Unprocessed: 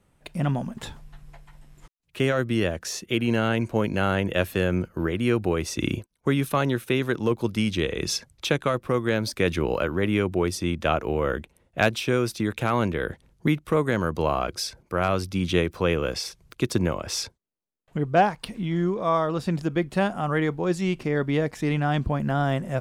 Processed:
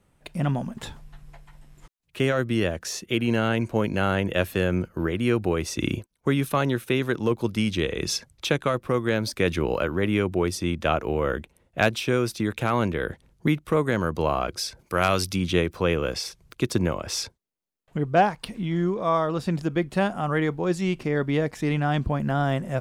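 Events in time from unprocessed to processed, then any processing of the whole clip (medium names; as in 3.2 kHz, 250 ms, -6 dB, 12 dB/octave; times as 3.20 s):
14.79–15.36 s: treble shelf 2.1 kHz +11 dB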